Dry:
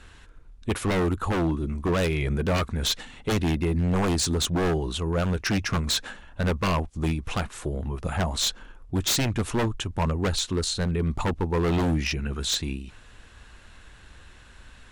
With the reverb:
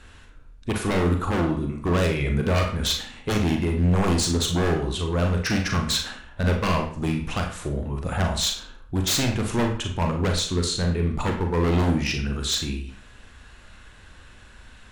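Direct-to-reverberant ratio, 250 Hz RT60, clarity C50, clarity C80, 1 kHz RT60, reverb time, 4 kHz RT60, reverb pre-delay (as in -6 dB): 2.5 dB, 0.45 s, 7.0 dB, 10.5 dB, 0.50 s, 0.50 s, 0.45 s, 34 ms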